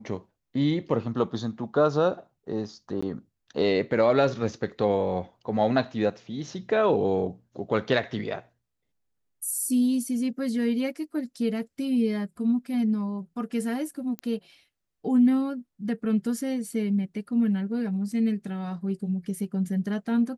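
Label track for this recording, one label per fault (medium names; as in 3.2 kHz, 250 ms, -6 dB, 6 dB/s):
3.010000	3.020000	dropout 15 ms
14.190000	14.190000	pop -19 dBFS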